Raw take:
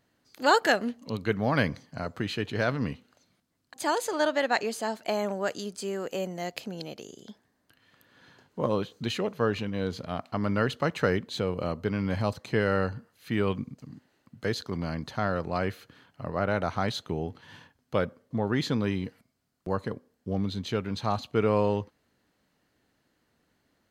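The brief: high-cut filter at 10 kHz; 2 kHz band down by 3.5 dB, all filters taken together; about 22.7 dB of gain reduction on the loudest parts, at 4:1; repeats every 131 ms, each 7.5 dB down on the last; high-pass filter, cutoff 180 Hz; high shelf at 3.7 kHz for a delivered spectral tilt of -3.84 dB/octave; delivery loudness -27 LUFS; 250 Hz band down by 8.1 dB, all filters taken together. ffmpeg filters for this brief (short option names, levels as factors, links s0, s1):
-af "highpass=180,lowpass=10000,equalizer=f=250:t=o:g=-9,equalizer=f=2000:t=o:g=-5.5,highshelf=f=3700:g=3.5,acompressor=threshold=0.00447:ratio=4,aecho=1:1:131|262|393|524|655:0.422|0.177|0.0744|0.0312|0.0131,volume=11.2"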